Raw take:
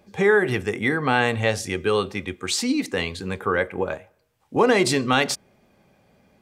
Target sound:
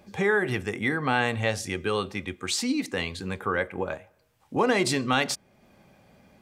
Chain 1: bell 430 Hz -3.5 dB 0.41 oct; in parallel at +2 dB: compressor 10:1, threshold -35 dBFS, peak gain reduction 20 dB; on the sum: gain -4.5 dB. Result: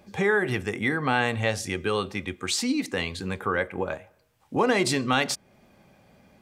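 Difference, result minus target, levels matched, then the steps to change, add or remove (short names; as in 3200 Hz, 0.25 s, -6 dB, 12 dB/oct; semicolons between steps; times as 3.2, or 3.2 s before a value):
compressor: peak gain reduction -6.5 dB
change: compressor 10:1, threshold -42 dBFS, peak gain reduction 26.5 dB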